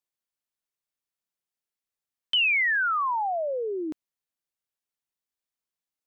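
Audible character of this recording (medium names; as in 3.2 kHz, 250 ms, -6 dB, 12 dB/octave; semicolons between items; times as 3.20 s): noise floor -91 dBFS; spectral tilt -1.0 dB/octave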